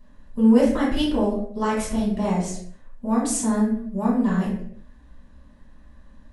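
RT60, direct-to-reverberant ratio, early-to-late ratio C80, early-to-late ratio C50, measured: not exponential, -8.5 dB, 6.5 dB, 2.5 dB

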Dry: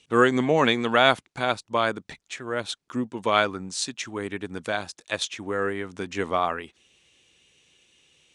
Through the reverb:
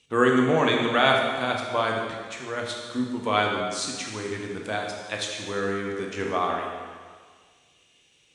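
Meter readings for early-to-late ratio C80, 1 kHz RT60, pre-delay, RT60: 3.5 dB, 1.7 s, 6 ms, 1.7 s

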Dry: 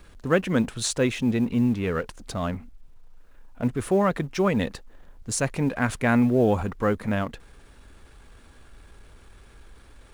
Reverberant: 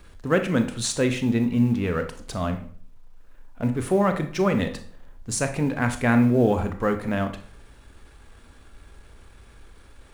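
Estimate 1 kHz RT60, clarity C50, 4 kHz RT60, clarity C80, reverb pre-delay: 0.45 s, 11.0 dB, 0.40 s, 15.5 dB, 25 ms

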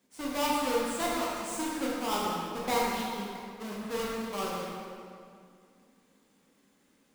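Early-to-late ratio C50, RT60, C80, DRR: -2.0 dB, 2.3 s, 0.0 dB, -5.5 dB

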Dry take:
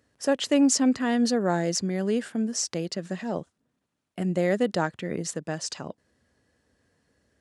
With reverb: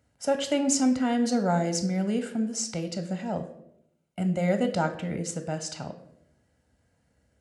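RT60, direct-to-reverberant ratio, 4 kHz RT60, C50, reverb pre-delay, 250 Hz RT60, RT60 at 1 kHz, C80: 0.75 s, 7.5 dB, 0.50 s, 11.5 dB, 14 ms, 1.0 s, 0.65 s, 13.5 dB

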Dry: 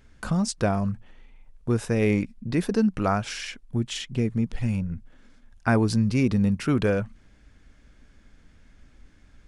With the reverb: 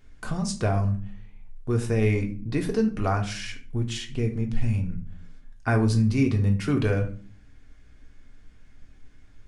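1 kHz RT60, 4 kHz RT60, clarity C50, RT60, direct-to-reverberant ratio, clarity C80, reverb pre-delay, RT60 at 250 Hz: 0.40 s, 0.30 s, 12.0 dB, 0.45 s, 2.5 dB, 17.0 dB, 3 ms, 0.75 s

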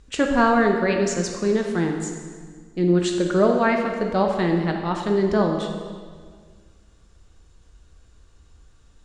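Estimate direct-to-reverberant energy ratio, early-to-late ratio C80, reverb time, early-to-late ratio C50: 2.0 dB, 6.0 dB, 1.8 s, 4.0 dB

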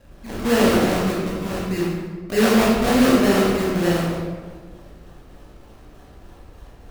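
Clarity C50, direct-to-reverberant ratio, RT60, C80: -0.5 dB, -7.0 dB, 1.6 s, 2.0 dB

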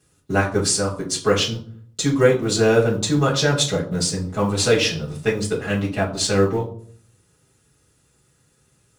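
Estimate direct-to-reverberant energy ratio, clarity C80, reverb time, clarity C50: -8.5 dB, 14.0 dB, 0.55 s, 10.0 dB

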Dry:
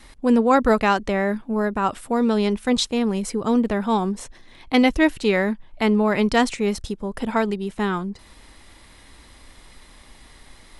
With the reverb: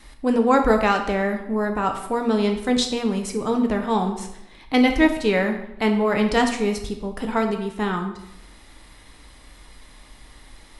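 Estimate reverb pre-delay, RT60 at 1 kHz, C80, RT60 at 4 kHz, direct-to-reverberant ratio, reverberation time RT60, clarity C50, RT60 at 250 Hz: 6 ms, 0.80 s, 10.5 dB, 0.65 s, 4.0 dB, 0.80 s, 8.0 dB, 0.85 s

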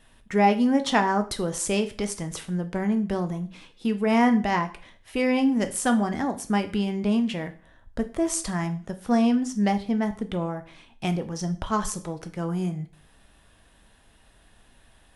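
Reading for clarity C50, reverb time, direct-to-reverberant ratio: 14.5 dB, 0.45 s, 7.5 dB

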